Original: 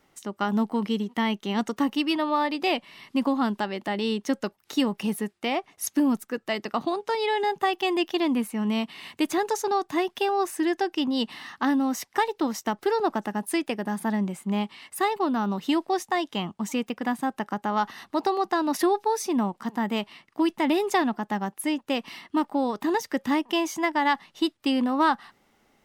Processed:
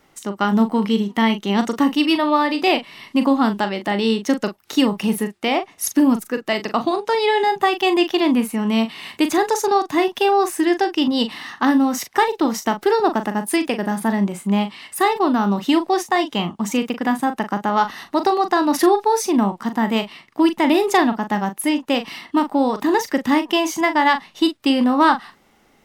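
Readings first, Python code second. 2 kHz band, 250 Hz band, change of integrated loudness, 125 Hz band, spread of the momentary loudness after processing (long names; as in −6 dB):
+7.5 dB, +7.5 dB, +7.5 dB, +7.5 dB, 6 LU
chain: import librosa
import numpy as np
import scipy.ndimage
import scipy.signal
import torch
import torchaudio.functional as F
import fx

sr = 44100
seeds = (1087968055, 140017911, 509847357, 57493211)

y = fx.doubler(x, sr, ms=40.0, db=-9.5)
y = y * 10.0 ** (7.0 / 20.0)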